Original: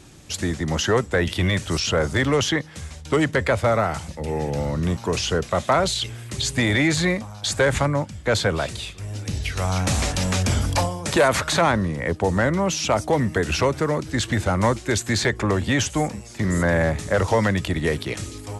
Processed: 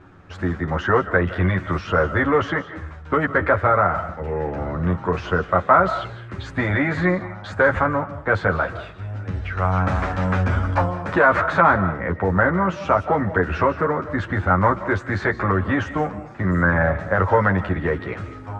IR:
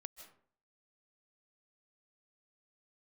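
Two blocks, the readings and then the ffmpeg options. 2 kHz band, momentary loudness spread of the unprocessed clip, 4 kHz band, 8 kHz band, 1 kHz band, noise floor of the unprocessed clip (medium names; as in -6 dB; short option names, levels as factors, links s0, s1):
+3.5 dB, 8 LU, -14.0 dB, under -20 dB, +5.5 dB, -40 dBFS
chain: -filter_complex "[0:a]lowpass=f=1400:t=q:w=2.7,asplit=2[s0][s1];[1:a]atrim=start_sample=2205,highshelf=f=5300:g=11.5,adelay=11[s2];[s1][s2]afir=irnorm=-1:irlink=0,volume=1.26[s3];[s0][s3]amix=inputs=2:normalize=0,volume=0.794"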